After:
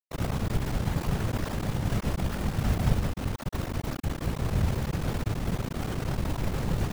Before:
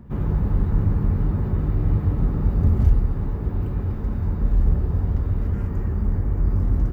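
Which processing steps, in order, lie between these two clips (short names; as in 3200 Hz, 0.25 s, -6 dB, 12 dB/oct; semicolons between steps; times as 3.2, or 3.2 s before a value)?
reverse; upward compressor, threshold -24 dBFS; reverse; fixed phaser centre 760 Hz, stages 4; bit-crush 4-bit; whisperiser; gain -7.5 dB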